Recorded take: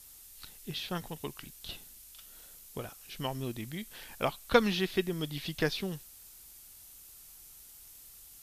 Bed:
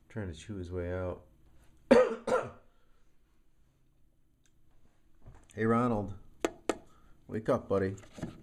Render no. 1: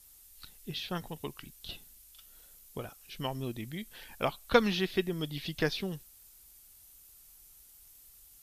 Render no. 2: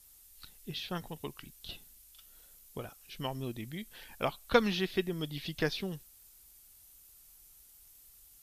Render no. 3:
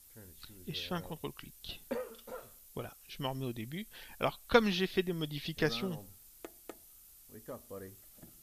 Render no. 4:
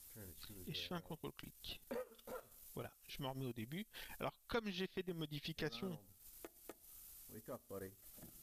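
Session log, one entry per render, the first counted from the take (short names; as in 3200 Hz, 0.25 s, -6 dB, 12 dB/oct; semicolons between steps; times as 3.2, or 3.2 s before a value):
denoiser 6 dB, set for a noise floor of -53 dBFS
gain -1.5 dB
add bed -16.5 dB
transient shaper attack -7 dB, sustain -11 dB; compressor 2:1, threshold -46 dBFS, peak gain reduction 12.5 dB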